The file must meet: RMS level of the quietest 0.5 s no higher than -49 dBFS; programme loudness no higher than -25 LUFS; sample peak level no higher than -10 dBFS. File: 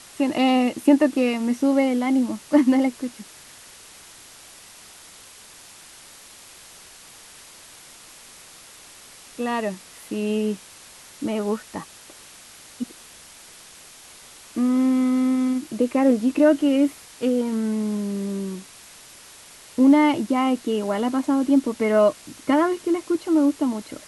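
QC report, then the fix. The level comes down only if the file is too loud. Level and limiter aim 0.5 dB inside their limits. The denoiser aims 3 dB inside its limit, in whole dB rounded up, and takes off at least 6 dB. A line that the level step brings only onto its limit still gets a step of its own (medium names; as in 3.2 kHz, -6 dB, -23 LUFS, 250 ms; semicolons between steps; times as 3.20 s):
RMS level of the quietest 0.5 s -46 dBFS: fail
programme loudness -21.5 LUFS: fail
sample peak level -5.5 dBFS: fail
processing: trim -4 dB; peak limiter -10.5 dBFS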